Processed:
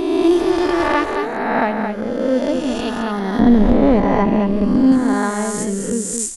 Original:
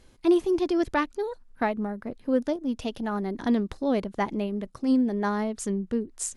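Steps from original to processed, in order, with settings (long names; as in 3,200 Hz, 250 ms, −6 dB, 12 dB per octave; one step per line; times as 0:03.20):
peak hold with a rise ahead of every peak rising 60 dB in 1.92 s
0:03.39–0:04.92: spectral tilt −3 dB per octave
single-tap delay 218 ms −6.5 dB
level +4.5 dB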